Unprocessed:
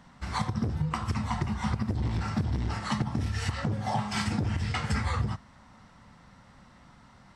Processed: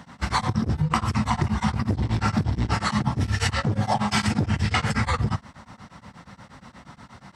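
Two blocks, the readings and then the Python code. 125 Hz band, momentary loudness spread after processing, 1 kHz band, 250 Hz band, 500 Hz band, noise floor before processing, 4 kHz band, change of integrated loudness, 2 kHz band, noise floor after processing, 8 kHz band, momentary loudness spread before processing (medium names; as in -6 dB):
+5.5 dB, 3 LU, +7.5 dB, +6.5 dB, +7.0 dB, -56 dBFS, +8.0 dB, +6.0 dB, +8.0 dB, -53 dBFS, +8.0 dB, 2 LU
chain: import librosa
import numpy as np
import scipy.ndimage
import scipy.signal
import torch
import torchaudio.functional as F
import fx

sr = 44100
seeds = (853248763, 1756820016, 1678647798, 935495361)

p1 = fx.over_compress(x, sr, threshold_db=-31.0, ratio=-0.5)
p2 = x + F.gain(torch.from_numpy(p1), 0.0).numpy()
p3 = scipy.signal.sosfilt(scipy.signal.butter(2, 67.0, 'highpass', fs=sr, output='sos'), p2)
p4 = p3 * np.abs(np.cos(np.pi * 8.4 * np.arange(len(p3)) / sr))
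y = F.gain(torch.from_numpy(p4), 5.0).numpy()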